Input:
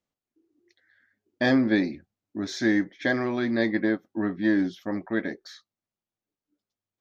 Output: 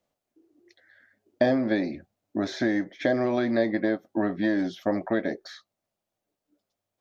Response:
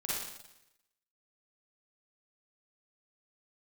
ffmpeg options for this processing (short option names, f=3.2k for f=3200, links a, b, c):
-filter_complex "[0:a]acrossover=split=570|3400[a][b][c];[a]acompressor=threshold=-31dB:ratio=4[d];[b]acompressor=threshold=-40dB:ratio=4[e];[c]acompressor=threshold=-53dB:ratio=4[f];[d][e][f]amix=inputs=3:normalize=0,equalizer=f=630:t=o:w=0.72:g=10.5,volume=5dB"